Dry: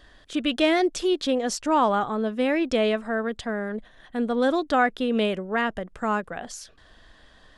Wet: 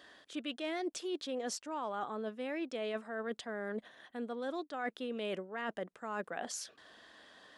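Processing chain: high-pass 250 Hz 12 dB/octave; reverse; compression 12:1, threshold -33 dBFS, peak gain reduction 18 dB; reverse; trim -2 dB

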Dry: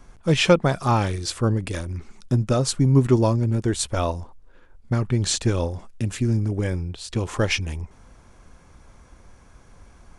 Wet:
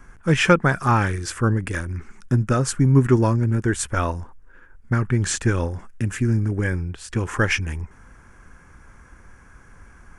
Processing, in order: fifteen-band graphic EQ 630 Hz -6 dB, 1.6 kHz +10 dB, 4 kHz -11 dB; trim +1.5 dB

